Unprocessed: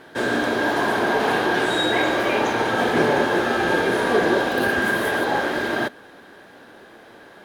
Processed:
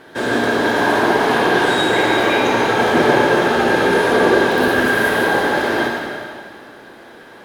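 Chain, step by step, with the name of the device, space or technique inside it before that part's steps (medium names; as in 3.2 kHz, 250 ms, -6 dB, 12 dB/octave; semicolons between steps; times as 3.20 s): stairwell (reverberation RT60 2.0 s, pre-delay 46 ms, DRR -1 dB); trim +2 dB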